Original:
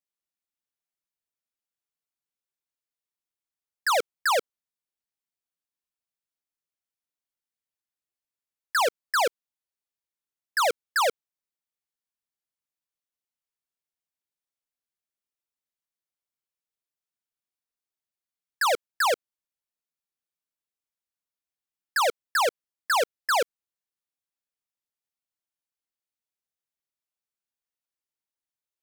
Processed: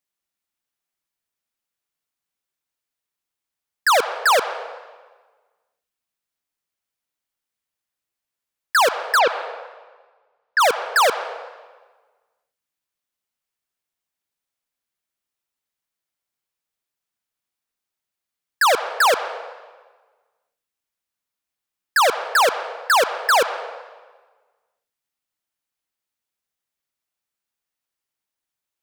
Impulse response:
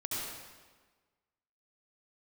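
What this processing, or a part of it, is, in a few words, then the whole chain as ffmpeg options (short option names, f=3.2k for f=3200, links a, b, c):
filtered reverb send: -filter_complex "[0:a]asplit=3[a][b][c];[a]afade=t=out:st=9.18:d=0.02[d];[b]lowpass=f=4.3k:w=0.5412,lowpass=f=4.3k:w=1.3066,afade=t=in:st=9.18:d=0.02,afade=t=out:st=10.59:d=0.02[e];[c]afade=t=in:st=10.59:d=0.02[f];[d][e][f]amix=inputs=3:normalize=0,asplit=2[g][h];[h]highpass=f=420:w=0.5412,highpass=f=420:w=1.3066,lowpass=3.6k[i];[1:a]atrim=start_sample=2205[j];[i][j]afir=irnorm=-1:irlink=0,volume=-12dB[k];[g][k]amix=inputs=2:normalize=0,volume=6.5dB"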